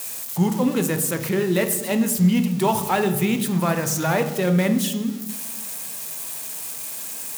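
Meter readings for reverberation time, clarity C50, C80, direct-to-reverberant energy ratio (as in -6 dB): 1.1 s, 10.5 dB, 12.5 dB, 7.0 dB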